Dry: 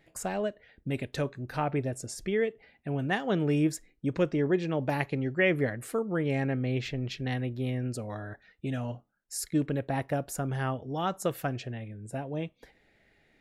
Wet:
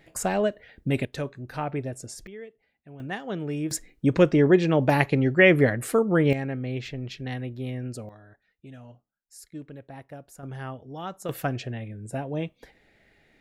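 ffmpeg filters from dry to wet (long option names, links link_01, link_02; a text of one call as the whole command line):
ffmpeg -i in.wav -af "asetnsamples=nb_out_samples=441:pad=0,asendcmd='1.05 volume volume -0.5dB;2.27 volume volume -13.5dB;3 volume volume -4dB;3.71 volume volume 8.5dB;6.33 volume volume -1dB;8.09 volume volume -12dB;10.43 volume volume -5dB;11.29 volume volume 4dB',volume=7dB" out.wav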